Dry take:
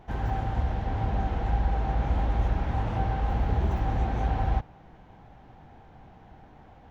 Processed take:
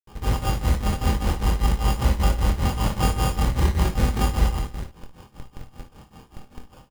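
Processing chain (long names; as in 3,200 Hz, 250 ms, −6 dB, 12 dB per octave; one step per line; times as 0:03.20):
convolution reverb RT60 0.40 s, pre-delay 18 ms, DRR 5 dB
granular cloud 210 ms, grains 5.1 per second, pitch spread up and down by 0 semitones
in parallel at −8 dB: comparator with hysteresis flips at −40.5 dBFS
on the sum: Butterworth band-reject 690 Hz, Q 5.7
decimation without filtering 22×
ambience of single reflections 24 ms −8 dB, 57 ms −12 dB, 73 ms −17 dB
level +5.5 dB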